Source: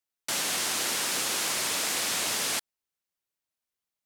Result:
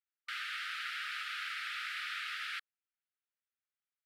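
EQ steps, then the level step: brick-wall FIR high-pass 1.2 kHz; distance through air 440 m; 0.0 dB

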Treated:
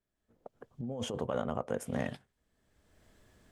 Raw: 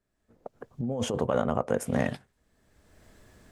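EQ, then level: peaking EQ 3.2 kHz +4 dB 0.29 oct; -7.5 dB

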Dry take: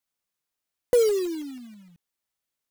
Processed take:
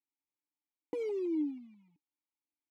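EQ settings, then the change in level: vowel filter u; peaking EQ 450 Hz +4.5 dB 1.8 oct; 0.0 dB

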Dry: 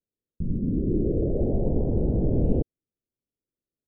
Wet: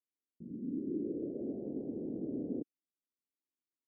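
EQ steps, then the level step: ladder band-pass 320 Hz, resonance 50%; -3.0 dB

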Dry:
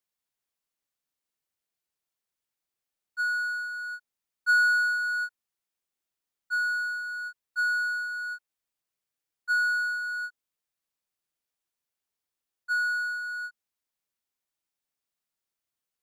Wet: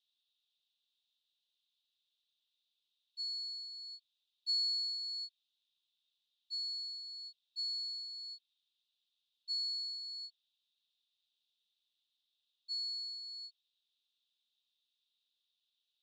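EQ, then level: steep high-pass 2.6 kHz 72 dB/octave; resonant low-pass 3.7 kHz, resonance Q 8.7; 0.0 dB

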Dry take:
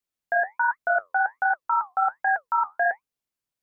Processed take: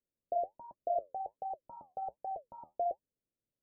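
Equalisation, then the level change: elliptic low-pass 580 Hz, stop band 60 dB; +3.5 dB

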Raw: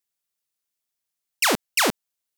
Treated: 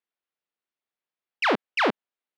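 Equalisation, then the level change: high-pass 240 Hz; low-pass 8.4 kHz 12 dB/octave; distance through air 360 m; +2.0 dB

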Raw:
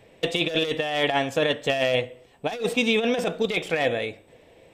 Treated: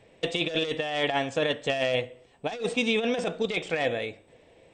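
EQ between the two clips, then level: brick-wall FIR low-pass 9.1 kHz; -3.5 dB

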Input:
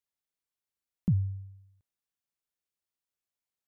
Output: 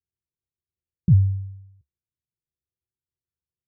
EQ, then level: rippled Chebyshev low-pass 520 Hz, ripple 9 dB; peaking EQ 72 Hz +13 dB 0.64 oct; bass shelf 410 Hz +11 dB; 0.0 dB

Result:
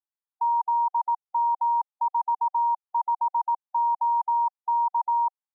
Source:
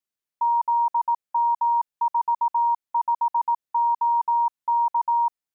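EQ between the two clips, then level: brick-wall FIR high-pass 760 Hz; low-pass 1 kHz 12 dB/octave; tilt EQ -4.5 dB/octave; 0.0 dB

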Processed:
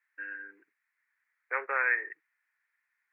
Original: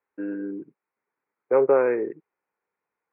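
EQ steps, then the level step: resonant high-pass 1.8 kHz, resonance Q 5.3; 0.0 dB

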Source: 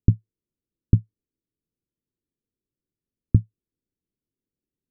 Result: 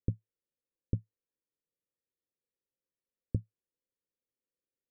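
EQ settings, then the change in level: cascade formant filter e; +4.5 dB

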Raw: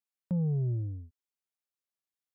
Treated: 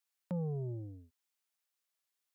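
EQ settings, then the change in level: high-pass 860 Hz 6 dB/octave; +7.0 dB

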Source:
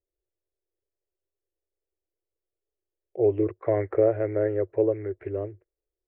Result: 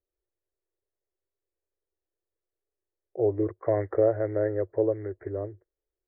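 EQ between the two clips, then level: elliptic low-pass 1.9 kHz, stop band 40 dB; dynamic bell 390 Hz, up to -4 dB, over -34 dBFS, Q 4; 0.0 dB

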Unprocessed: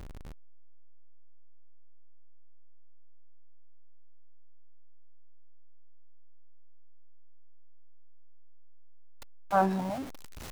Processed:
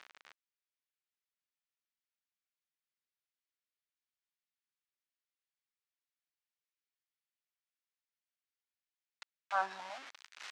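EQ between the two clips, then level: dynamic bell 2.1 kHz, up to -5 dB, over -45 dBFS, Q 1.3; Butterworth band-pass 3.3 kHz, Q 0.62; treble shelf 3.9 kHz -11.5 dB; +6.0 dB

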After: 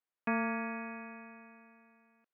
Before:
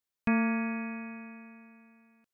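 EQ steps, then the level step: band-pass 340–2100 Hz; 0.0 dB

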